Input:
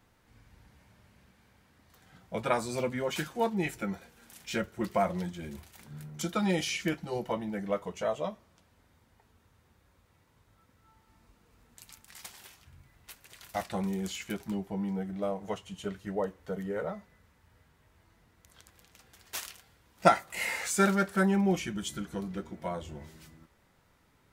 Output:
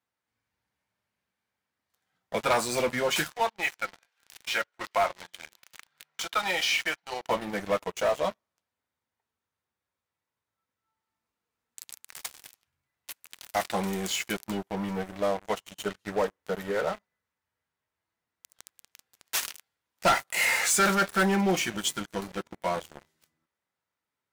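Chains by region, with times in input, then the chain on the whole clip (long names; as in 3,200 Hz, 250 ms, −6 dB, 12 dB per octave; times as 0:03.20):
0:03.30–0:07.27: three-way crossover with the lows and the highs turned down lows −20 dB, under 570 Hz, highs −16 dB, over 5,400 Hz + one half of a high-frequency compander encoder only
whole clip: high-pass filter 74 Hz; low-shelf EQ 370 Hz −12 dB; leveller curve on the samples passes 5; level −8 dB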